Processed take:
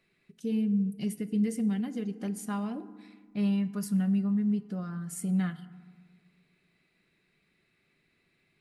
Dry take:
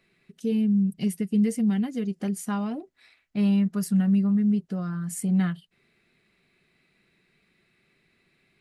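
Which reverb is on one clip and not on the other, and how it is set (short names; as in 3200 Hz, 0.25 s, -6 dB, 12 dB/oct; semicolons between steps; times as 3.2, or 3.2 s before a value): FDN reverb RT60 1.5 s, low-frequency decay 1.4×, high-frequency decay 0.45×, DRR 12.5 dB; gain -5 dB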